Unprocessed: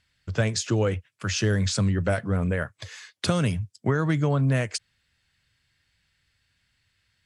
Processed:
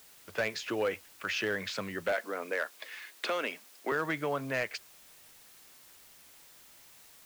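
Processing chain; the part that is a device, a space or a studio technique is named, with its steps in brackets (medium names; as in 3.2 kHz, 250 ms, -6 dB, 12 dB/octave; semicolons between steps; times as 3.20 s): drive-through speaker (band-pass 430–3200 Hz; peaking EQ 2.3 kHz +5 dB 0.77 oct; hard clipper -20.5 dBFS, distortion -18 dB; white noise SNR 20 dB); 2.12–3.92 s: steep high-pass 240 Hz 36 dB/octave; trim -2.5 dB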